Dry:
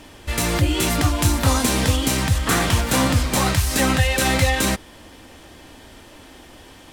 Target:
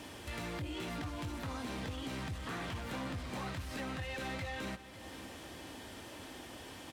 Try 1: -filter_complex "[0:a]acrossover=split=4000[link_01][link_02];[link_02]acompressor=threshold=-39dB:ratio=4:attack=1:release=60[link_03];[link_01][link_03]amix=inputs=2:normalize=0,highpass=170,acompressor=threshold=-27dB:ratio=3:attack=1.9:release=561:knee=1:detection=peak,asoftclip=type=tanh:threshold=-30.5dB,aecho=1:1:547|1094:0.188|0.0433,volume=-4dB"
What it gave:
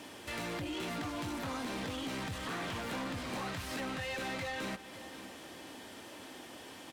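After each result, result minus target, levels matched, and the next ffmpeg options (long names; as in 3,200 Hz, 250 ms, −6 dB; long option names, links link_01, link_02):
downward compressor: peak gain reduction −5.5 dB; 125 Hz band −4.5 dB
-filter_complex "[0:a]acrossover=split=4000[link_01][link_02];[link_02]acompressor=threshold=-39dB:ratio=4:attack=1:release=60[link_03];[link_01][link_03]amix=inputs=2:normalize=0,highpass=170,acompressor=threshold=-33dB:ratio=3:attack=1.9:release=561:knee=1:detection=peak,asoftclip=type=tanh:threshold=-30.5dB,aecho=1:1:547|1094:0.188|0.0433,volume=-4dB"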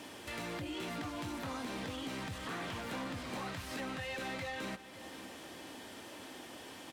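125 Hz band −4.5 dB
-filter_complex "[0:a]acrossover=split=4000[link_01][link_02];[link_02]acompressor=threshold=-39dB:ratio=4:attack=1:release=60[link_03];[link_01][link_03]amix=inputs=2:normalize=0,highpass=75,acompressor=threshold=-33dB:ratio=3:attack=1.9:release=561:knee=1:detection=peak,asoftclip=type=tanh:threshold=-30.5dB,aecho=1:1:547|1094:0.188|0.0433,volume=-4dB"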